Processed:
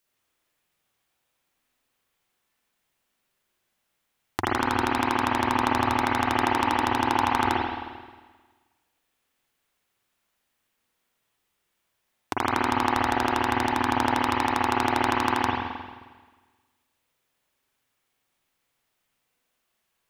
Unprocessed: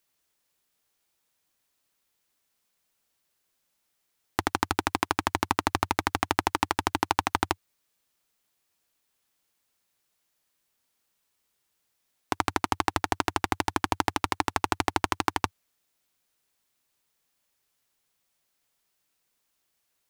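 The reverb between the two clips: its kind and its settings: spring tank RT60 1.4 s, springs 44/52 ms, chirp 75 ms, DRR -5.5 dB; gain -2.5 dB

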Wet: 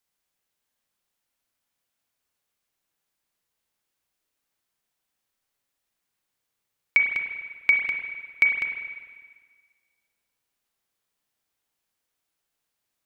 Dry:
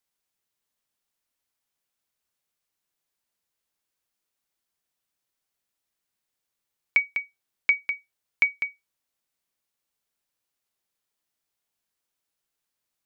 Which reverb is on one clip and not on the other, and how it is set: spring tank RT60 1.6 s, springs 32/50 ms, chirp 55 ms, DRR 2 dB; gain +1.5 dB

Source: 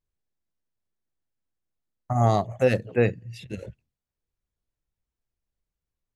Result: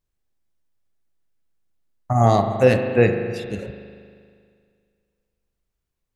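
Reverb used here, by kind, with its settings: spring tank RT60 2.1 s, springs 39 ms, chirp 30 ms, DRR 5.5 dB; gain +5 dB

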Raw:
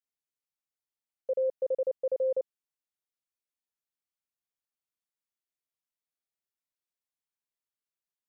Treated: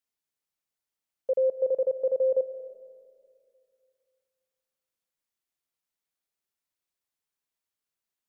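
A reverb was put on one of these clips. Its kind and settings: digital reverb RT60 2.3 s, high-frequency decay 0.4×, pre-delay 0.11 s, DRR 14 dB; gain +4 dB

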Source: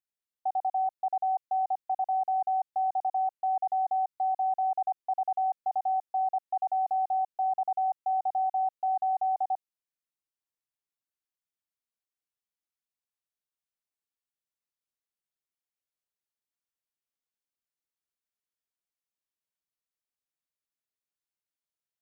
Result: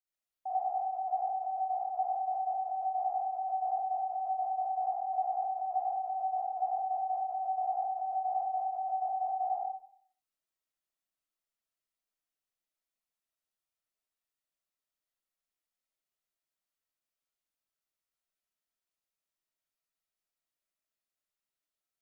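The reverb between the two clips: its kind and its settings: digital reverb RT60 0.57 s, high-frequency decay 0.6×, pre-delay 25 ms, DRR -9.5 dB; gain -8.5 dB

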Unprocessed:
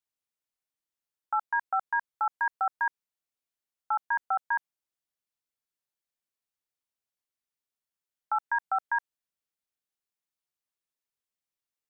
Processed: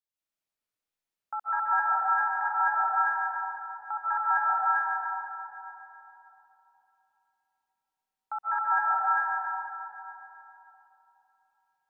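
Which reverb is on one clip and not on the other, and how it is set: digital reverb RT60 3.4 s, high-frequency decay 0.5×, pre-delay 0.115 s, DRR -9 dB; gain -6.5 dB

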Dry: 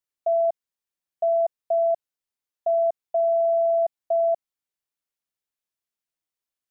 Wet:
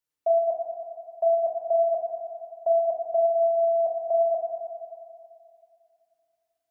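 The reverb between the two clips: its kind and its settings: FDN reverb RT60 2.5 s, low-frequency decay 0.75×, high-frequency decay 0.35×, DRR -2.5 dB; gain -1 dB

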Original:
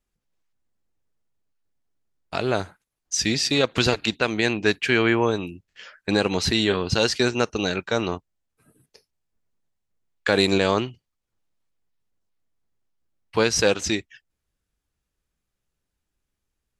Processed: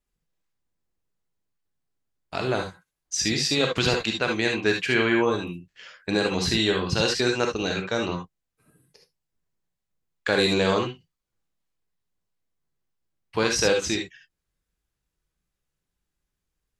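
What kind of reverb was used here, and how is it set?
non-linear reverb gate 90 ms rising, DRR 2 dB; gain -3.5 dB

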